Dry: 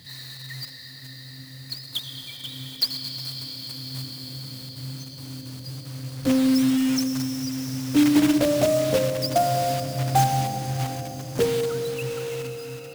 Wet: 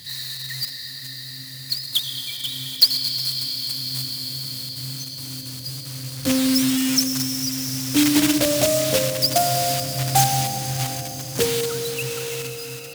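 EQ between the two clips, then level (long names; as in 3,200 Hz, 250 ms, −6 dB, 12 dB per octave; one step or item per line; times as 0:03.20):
high-pass filter 41 Hz
low-shelf EQ 79 Hz +7 dB
parametric band 16,000 Hz +13 dB 2.6 octaves
−1.5 dB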